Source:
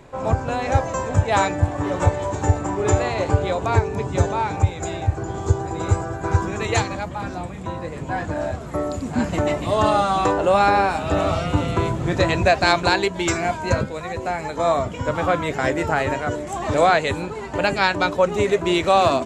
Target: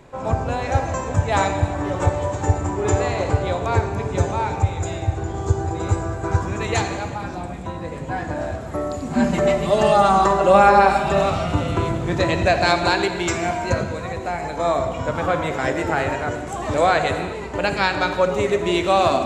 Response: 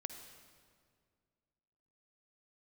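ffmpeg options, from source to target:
-filter_complex "[0:a]asettb=1/sr,asplit=3[s0][s1][s2];[s0]atrim=end=9.104[s3];[s1]atrim=start=9.1:end=11.3,asetpts=PTS-STARTPTS,afade=t=in:d=0.004:c=qsin,afade=t=out:st=2.196:d=0.004:c=qsin,aecho=1:1:5.1:0.98,atrim=end_sample=97020[s4];[s2]atrim=start=11.296[s5];[s3][s4]acrossfade=d=0.004:c1=hsin:c2=qsin[s6];[s6][s5]acrossfade=d=0.004:c1=qsin:c2=hsin[s7];[1:a]atrim=start_sample=2205,afade=t=out:st=0.44:d=0.01,atrim=end_sample=19845[s8];[s7][s8]afir=irnorm=-1:irlink=0,volume=1.26"

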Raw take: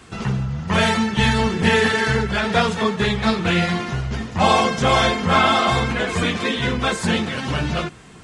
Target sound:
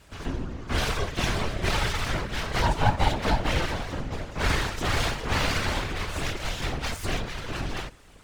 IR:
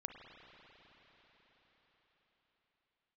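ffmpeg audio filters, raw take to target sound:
-filter_complex "[0:a]asettb=1/sr,asplit=3[s0][s1][s2];[s0]atrim=end=2.624[s3];[s1]atrim=start=2.62:end=4.39,asetpts=PTS-STARTPTS,afade=t=in:d=0.004:c=qsin,afade=t=out:st=1.766:d=0.004:c=qsin,equalizer=f=440:w=3.2:g=13.5[s4];[s2]atrim=start=4.386[s5];[s3][s4]acrossfade=d=0.004:c1=hsin:c2=qsin[s6];[s6][s5]acrossfade=d=0.004:c1=qsin:c2=hsin,asettb=1/sr,asplit=3[s7][s8][s9];[s7]atrim=end=7.134[s10];[s8]atrim=start=7.13:end=7.53,asetpts=PTS-STARTPTS,afade=t=in:d=0.004:c=qsin,afade=t=out:st=0.396:d=0.004:c=qsin,lowpass=5200[s11];[s9]atrim=start=7.526[s12];[s10][s11]acrossfade=d=0.004:c1=hsin:c2=qsin[s13];[s13][s12]acrossfade=d=0.004:c1=qsin:c2=hsin,aeval=exprs='abs(val(0))':c=same,afftfilt=real='hypot(re,im)*cos(2*PI*random(0))':imag='hypot(re,im)*sin(2*PI*random(1))':win_size=512:overlap=0.75,volume=0.891"

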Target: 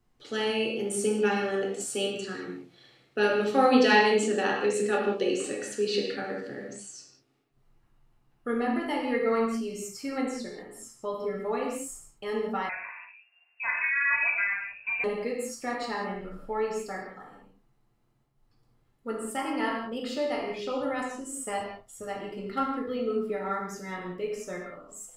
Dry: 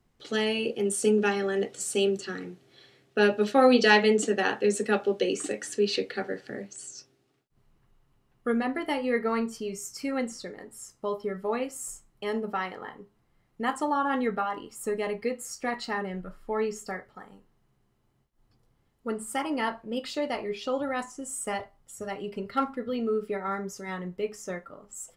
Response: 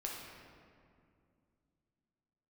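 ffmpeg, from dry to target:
-filter_complex "[1:a]atrim=start_sample=2205,afade=t=out:st=0.25:d=0.01,atrim=end_sample=11466[s0];[0:a][s0]afir=irnorm=-1:irlink=0,asettb=1/sr,asplit=3[s1][s2][s3];[s1]atrim=end=12.694[s4];[s2]atrim=start=12.69:end=15.04,asetpts=PTS-STARTPTS,afade=t=in:d=0.004:c=qsin,afade=t=out:st=2.346:d=0.004:c=qsin,lowpass=f=2400:t=q:w=0.5098,lowpass=f=2400:t=q:w=0.6013,lowpass=f=2400:t=q:w=0.9,lowpass=f=2400:t=q:w=2.563,afreqshift=-2800[s5];[s3]atrim=start=15.036[s6];[s4][s5]acrossfade=d=0.004:c1=hsin:c2=qsin[s7];[s7][s6]acrossfade=d=0.004:c1=qsin:c2=hsin"

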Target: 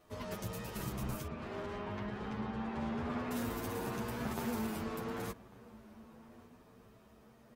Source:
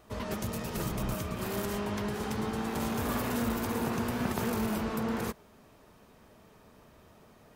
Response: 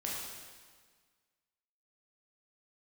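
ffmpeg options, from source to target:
-filter_complex "[0:a]asettb=1/sr,asplit=3[s0][s1][s2];[s0]atrim=end=1.274[s3];[s1]atrim=start=1.27:end=3.31,asetpts=PTS-STARTPTS,afade=t=in:d=0.004:c=qsin,afade=t=out:st=2.036:d=0.004:c=qsin,lowpass=2900[s4];[s2]atrim=start=3.306[s5];[s3][s4]acrossfade=d=0.004:c1=hsin:c2=qsin[s6];[s6][s5]acrossfade=d=0.004:c1=qsin:c2=hsin,asplit=2[s7][s8];[s8]adelay=1146,lowpass=f=2100:p=1,volume=0.106,asplit=2[s9][s10];[s10]adelay=1146,lowpass=f=2100:p=1,volume=0.52,asplit=2[s11][s12];[s12]adelay=1146,lowpass=f=2100:p=1,volume=0.52,asplit=2[s13][s14];[s14]adelay=1146,lowpass=f=2100:p=1,volume=0.52[s15];[s9][s11][s13][s15]amix=inputs=4:normalize=0[s16];[s7][s16]amix=inputs=2:normalize=0,asplit=2[s17][s18];[s18]adelay=9.4,afreqshift=0.63[s19];[s17][s19]amix=inputs=2:normalize=1,volume=0.668"

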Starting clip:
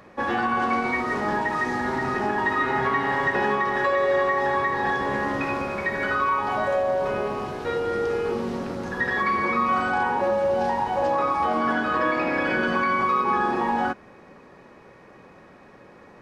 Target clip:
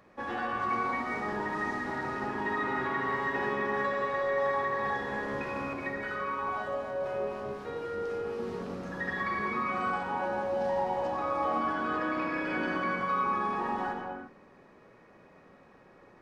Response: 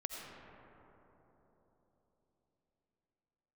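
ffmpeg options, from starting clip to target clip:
-filter_complex "[0:a]asettb=1/sr,asplit=3[s0][s1][s2];[s0]atrim=end=5.734[s3];[s1]atrim=start=5.73:end=8.39,asetpts=PTS-STARTPTS,afade=t=in:d=0.004:c=qsin,afade=t=out:st=2.656:d=0.004:c=qsin,acrossover=split=900[s4][s5];[s4]aeval=exprs='val(0)*(1-0.5/2+0.5/2*cos(2*PI*4*n/s))':c=same[s6];[s5]aeval=exprs='val(0)*(1-0.5/2-0.5/2*cos(2*PI*4*n/s))':c=same[s7];[s6][s7]amix=inputs=2:normalize=0[s8];[s2]atrim=start=8.386[s9];[s3][s8]acrossfade=d=0.004:c1=hsin:c2=qsin[s10];[s10][s9]acrossfade=d=0.004:c1=qsin:c2=hsin[s11];[1:a]atrim=start_sample=2205,afade=t=out:st=0.41:d=0.01,atrim=end_sample=18522[s12];[s11][s12]afir=irnorm=-1:irlink=0,volume=0.422"

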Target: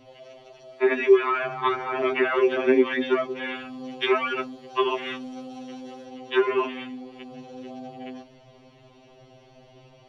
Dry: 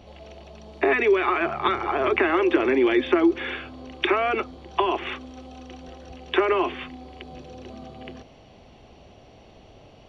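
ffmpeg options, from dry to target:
-filter_complex "[0:a]asettb=1/sr,asplit=3[s0][s1][s2];[s0]atrim=end=3.554[s3];[s1]atrim=start=3.55:end=6.05,asetpts=PTS-STARTPTS,afade=t=in:d=0.004:c=qsin,afade=t=out:st=2.496:d=0.004:c=qsin,highshelf=f=4700:g=7.5[s4];[s2]atrim=start=6.046[s5];[s3][s4]acrossfade=d=0.004:c1=hsin:c2=qsin[s6];[s6][s5]acrossfade=d=0.004:c1=qsin:c2=hsin,afftfilt=real='re*2.45*eq(mod(b,6),0)':imag='im*2.45*eq(mod(b,6),0)':win_size=2048:overlap=0.75"

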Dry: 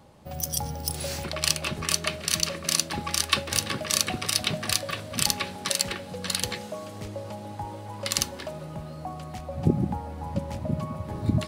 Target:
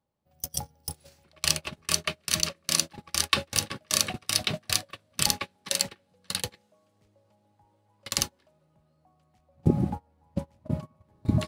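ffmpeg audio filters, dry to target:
-af "agate=range=0.0355:threshold=0.0447:ratio=16:detection=peak"

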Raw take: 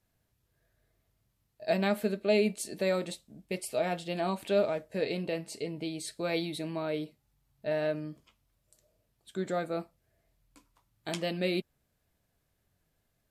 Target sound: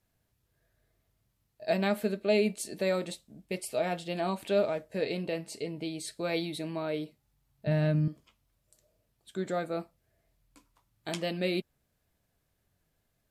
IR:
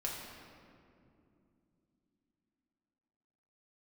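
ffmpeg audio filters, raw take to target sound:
-filter_complex "[0:a]asettb=1/sr,asplit=3[s0][s1][s2];[s0]atrim=end=7.674[s3];[s1]atrim=start=7.67:end=8.08,asetpts=PTS-STARTPTS,afade=t=in:d=0.004:c=qsin,afade=t=out:st=0.406:d=0.004:c=qsin,lowshelf=f=270:t=q:w=1.5:g=13.5[s4];[s2]atrim=start=8.076[s5];[s3][s4]acrossfade=d=0.004:c1=hsin:c2=qsin[s6];[s6][s5]acrossfade=d=0.004:c1=qsin:c2=hsin"

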